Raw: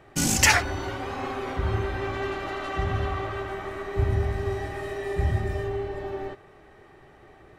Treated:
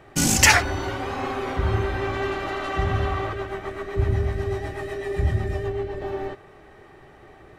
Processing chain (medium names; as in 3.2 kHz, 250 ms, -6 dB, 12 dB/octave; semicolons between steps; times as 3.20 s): 3.33–6.02 s: rotary cabinet horn 8 Hz; trim +3.5 dB